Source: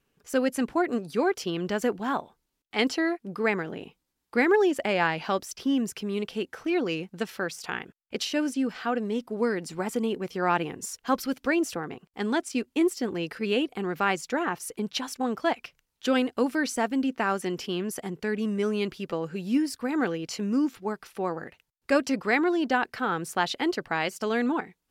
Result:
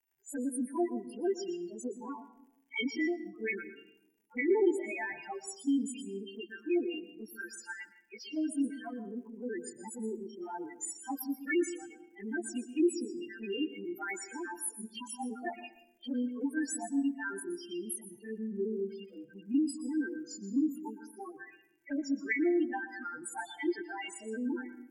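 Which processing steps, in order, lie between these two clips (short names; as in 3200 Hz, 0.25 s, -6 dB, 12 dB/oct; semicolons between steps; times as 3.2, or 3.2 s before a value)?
frequency quantiser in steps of 2 st; loudest bins only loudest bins 4; envelope flanger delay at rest 2.3 ms, full sweep at -22.5 dBFS; crackle 120/s -59 dBFS; fixed phaser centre 810 Hz, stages 8; reverb RT60 0.80 s, pre-delay 0.118 s, DRR 12 dB; gain -2 dB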